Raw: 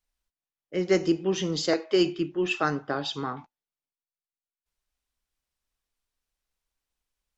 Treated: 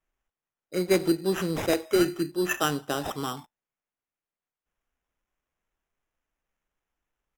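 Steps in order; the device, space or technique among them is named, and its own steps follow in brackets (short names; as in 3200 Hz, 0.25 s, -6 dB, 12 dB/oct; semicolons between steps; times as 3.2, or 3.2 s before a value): crushed at another speed (playback speed 1.25×; sample-and-hold 8×; playback speed 0.8×)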